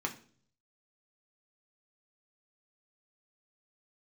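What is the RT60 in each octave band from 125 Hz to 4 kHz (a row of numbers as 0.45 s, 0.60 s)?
0.90 s, 0.65 s, 0.55 s, 0.40 s, 0.40 s, 0.45 s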